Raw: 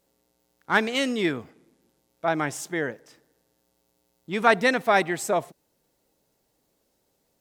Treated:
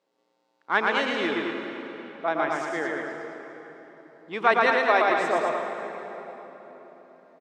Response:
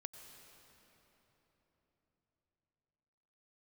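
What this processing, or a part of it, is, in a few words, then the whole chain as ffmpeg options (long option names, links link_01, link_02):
station announcement: -filter_complex "[0:a]highpass=320,lowpass=3800,equalizer=frequency=1100:width_type=o:width=0.25:gain=5,aecho=1:1:116.6|218.7:0.708|0.501[link_01];[1:a]atrim=start_sample=2205[link_02];[link_01][link_02]afir=irnorm=-1:irlink=0,asettb=1/sr,asplit=3[link_03][link_04][link_05];[link_03]atrim=end=4.704[link_06];[link_04]atrim=start=4.7:end=5.1,asetpts=PTS-STARTPTS,afade=type=in:duration=0.004:curve=qsin,afade=type=out:start_time=0.396:duration=0.004:curve=qsin,highpass=frequency=250:width=0.5412,highpass=frequency=250:width=1.3066[link_07];[link_05]atrim=start=5.096[link_08];[link_06][link_07]acrossfade=duration=0.004:curve1=hsin:curve2=qsin[link_09];[link_09][link_08]acrossfade=duration=0.004:curve1=qsin:curve2=hsin,volume=3dB"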